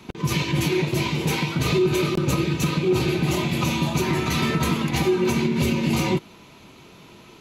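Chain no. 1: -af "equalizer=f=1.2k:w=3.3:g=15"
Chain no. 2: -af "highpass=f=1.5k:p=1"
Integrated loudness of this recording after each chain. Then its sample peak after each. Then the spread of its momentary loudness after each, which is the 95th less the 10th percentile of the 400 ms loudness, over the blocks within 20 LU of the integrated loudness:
-20.5, -29.5 LUFS; -6.0, -15.5 dBFS; 3, 3 LU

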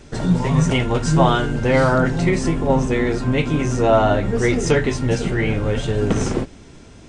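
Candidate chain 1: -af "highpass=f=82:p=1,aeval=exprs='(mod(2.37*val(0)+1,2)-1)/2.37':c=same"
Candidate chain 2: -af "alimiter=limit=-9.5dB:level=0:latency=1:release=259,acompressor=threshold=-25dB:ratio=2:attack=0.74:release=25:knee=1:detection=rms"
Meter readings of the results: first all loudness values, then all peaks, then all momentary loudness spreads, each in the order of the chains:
-19.0, -26.0 LUFS; -7.5, -16.0 dBFS; 6, 2 LU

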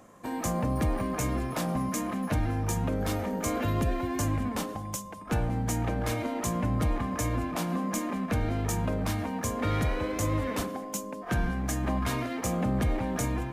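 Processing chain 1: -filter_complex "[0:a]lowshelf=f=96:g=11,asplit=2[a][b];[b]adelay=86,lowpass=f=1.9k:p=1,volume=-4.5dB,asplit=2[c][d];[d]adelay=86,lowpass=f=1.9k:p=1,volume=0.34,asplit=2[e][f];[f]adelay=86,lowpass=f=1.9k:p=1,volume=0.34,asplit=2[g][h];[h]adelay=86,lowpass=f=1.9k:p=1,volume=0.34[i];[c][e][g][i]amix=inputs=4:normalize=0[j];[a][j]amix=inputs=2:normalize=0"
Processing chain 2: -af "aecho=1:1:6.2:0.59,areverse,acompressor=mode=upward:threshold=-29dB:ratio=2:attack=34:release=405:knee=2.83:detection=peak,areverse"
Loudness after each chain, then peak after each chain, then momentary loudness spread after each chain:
-25.0, -29.5 LUFS; -9.5, -15.5 dBFS; 7, 4 LU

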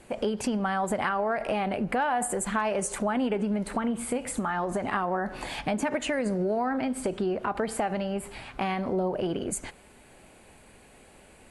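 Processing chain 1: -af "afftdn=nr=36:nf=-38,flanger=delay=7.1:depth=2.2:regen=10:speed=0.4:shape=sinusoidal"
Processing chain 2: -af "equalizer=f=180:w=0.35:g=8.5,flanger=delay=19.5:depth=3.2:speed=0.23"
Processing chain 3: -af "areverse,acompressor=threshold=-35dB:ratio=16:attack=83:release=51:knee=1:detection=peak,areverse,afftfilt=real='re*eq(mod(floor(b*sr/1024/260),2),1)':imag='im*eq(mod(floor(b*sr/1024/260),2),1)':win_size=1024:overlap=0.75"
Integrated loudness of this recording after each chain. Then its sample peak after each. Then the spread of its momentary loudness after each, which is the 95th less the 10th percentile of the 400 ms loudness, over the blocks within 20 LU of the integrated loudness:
-32.5, -26.5, -37.0 LUFS; -18.0, -12.0, -22.0 dBFS; 6, 6, 5 LU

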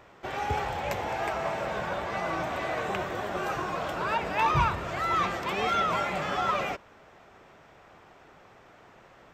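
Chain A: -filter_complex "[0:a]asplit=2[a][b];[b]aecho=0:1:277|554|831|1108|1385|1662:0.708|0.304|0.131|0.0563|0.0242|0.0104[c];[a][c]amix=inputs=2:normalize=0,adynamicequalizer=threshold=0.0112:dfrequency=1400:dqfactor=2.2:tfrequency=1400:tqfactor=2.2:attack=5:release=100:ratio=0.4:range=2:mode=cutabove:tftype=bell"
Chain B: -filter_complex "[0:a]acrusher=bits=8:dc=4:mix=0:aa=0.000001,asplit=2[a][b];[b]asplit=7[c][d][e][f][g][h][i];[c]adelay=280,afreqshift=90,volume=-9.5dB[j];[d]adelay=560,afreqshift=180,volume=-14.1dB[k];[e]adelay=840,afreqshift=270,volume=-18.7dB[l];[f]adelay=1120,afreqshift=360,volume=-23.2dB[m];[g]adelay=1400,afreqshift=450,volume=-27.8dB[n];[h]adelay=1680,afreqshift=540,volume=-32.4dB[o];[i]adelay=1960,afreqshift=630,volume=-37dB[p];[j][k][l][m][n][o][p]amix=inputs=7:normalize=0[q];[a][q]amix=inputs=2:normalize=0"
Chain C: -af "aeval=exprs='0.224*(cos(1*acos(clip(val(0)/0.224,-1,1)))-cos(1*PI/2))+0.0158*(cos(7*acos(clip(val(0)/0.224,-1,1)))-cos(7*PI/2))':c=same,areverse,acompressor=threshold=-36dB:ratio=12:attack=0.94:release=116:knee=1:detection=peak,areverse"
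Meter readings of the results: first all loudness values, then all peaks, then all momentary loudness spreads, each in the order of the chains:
-29.0, -28.5, -43.0 LUFS; -13.5, -13.0, -28.5 dBFS; 9, 12, 19 LU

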